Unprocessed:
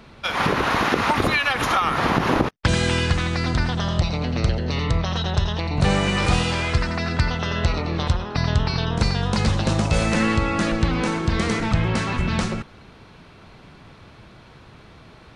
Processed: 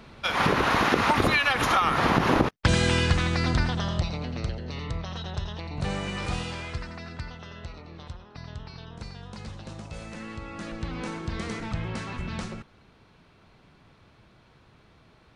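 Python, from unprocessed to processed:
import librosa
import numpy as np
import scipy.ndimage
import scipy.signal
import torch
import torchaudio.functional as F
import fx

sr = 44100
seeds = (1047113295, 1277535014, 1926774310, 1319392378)

y = fx.gain(x, sr, db=fx.line((3.51, -2.0), (4.57, -11.0), (6.42, -11.0), (7.72, -19.5), (10.24, -19.5), (11.05, -11.0)))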